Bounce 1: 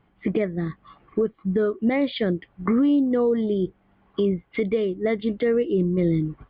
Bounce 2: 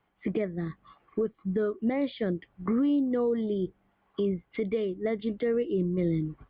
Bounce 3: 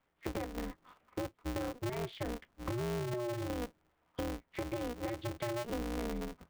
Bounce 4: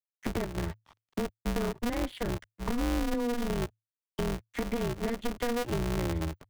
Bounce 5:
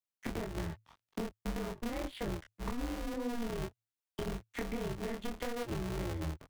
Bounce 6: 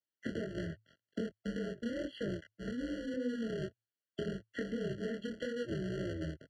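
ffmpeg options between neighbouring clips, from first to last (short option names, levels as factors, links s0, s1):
-filter_complex "[0:a]acrossover=split=420|1300[s0][s1][s2];[s0]agate=range=0.355:threshold=0.002:ratio=16:detection=peak[s3];[s2]alimiter=level_in=2.24:limit=0.0631:level=0:latency=1:release=83,volume=0.447[s4];[s3][s1][s4]amix=inputs=3:normalize=0,volume=0.501"
-af "acompressor=threshold=0.0355:ratio=6,aeval=exprs='val(0)*sgn(sin(2*PI*120*n/s))':c=same,volume=0.562"
-filter_complex "[0:a]asplit=2[s0][s1];[s1]alimiter=level_in=3.55:limit=0.0631:level=0:latency=1:release=227,volume=0.282,volume=0.794[s2];[s0][s2]amix=inputs=2:normalize=0,aeval=exprs='sgn(val(0))*max(abs(val(0))-0.00282,0)':c=same,afreqshift=-110,volume=1.68"
-af "acompressor=threshold=0.0251:ratio=6,flanger=delay=19.5:depth=7.5:speed=1.8,volume=1.19"
-af "highpass=120,lowpass=4700,afftfilt=real='re*eq(mod(floor(b*sr/1024/680),2),0)':imag='im*eq(mod(floor(b*sr/1024/680),2),0)':win_size=1024:overlap=0.75,volume=1.19"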